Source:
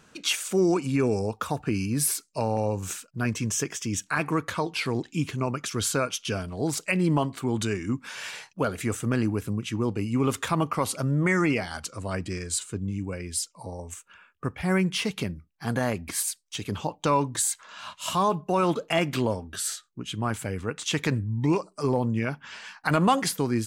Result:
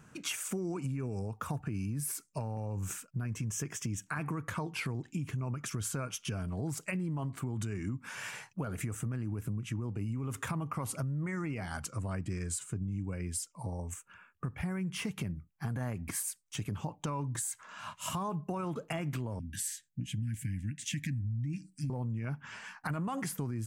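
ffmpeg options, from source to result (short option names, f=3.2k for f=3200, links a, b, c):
-filter_complex "[0:a]asettb=1/sr,asplit=3[a][b][c];[a]atrim=end=19.394[d];[b]atrim=start=19.39:end=21.9,asetpts=PTS-STARTPTS,afade=t=in:d=0.004:c=qsin,afade=t=out:st=2.506:d=0.004:c=qsin,asuperstop=centerf=710:order=20:qfactor=0.52[e];[c]atrim=start=21.896[f];[d][e]acrossfade=d=0.004:c1=hsin:c2=qsin[g];[g][f]acrossfade=d=0.004:c1=qsin:c2=hsin,equalizer=f=125:t=o:w=1:g=9,equalizer=f=500:t=o:w=1:g=-4,equalizer=f=4k:t=o:w=1:g=-11,alimiter=limit=-20dB:level=0:latency=1:release=65,acompressor=threshold=-31dB:ratio=6,volume=-1.5dB"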